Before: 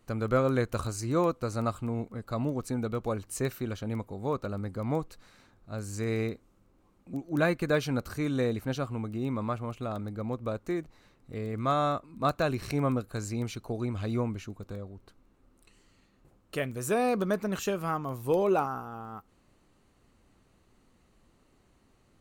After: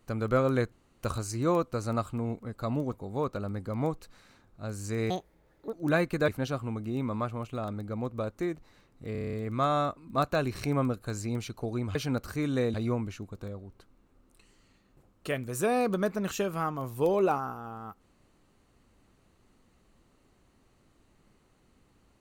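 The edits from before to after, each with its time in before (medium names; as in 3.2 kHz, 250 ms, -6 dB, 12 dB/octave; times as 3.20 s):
0.72 s: insert room tone 0.31 s
2.62–4.02 s: delete
6.19–7.22 s: speed 163%
7.77–8.56 s: move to 14.02 s
11.40 s: stutter 0.03 s, 8 plays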